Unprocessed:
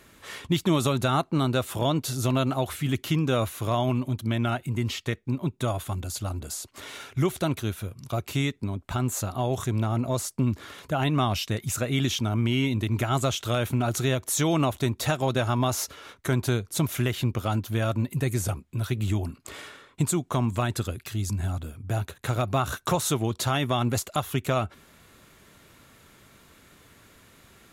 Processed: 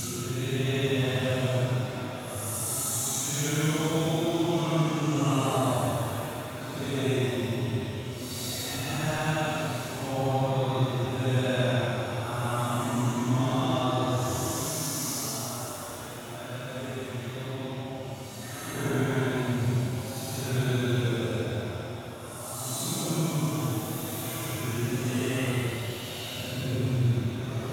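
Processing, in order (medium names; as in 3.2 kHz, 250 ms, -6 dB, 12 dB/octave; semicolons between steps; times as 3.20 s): backward echo that repeats 604 ms, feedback 82%, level -12 dB; Paulstretch 8.2×, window 0.10 s, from 13.98 s; pitch-shifted reverb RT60 3.6 s, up +7 st, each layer -8 dB, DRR 4 dB; trim -5.5 dB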